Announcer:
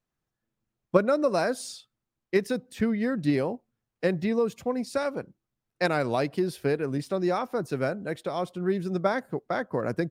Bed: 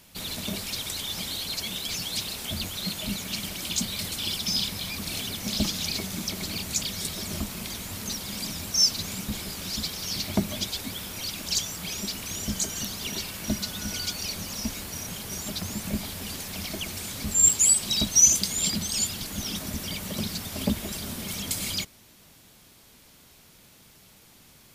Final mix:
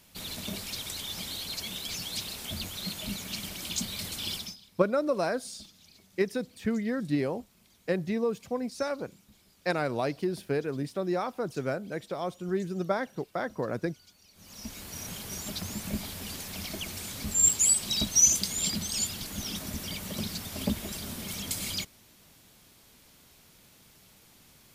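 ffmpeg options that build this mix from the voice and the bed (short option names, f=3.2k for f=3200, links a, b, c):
-filter_complex "[0:a]adelay=3850,volume=-3.5dB[a];[1:a]volume=19.5dB,afade=t=out:st=4.35:d=0.21:silence=0.0707946,afade=t=in:st=14.33:d=0.74:silence=0.0630957[b];[a][b]amix=inputs=2:normalize=0"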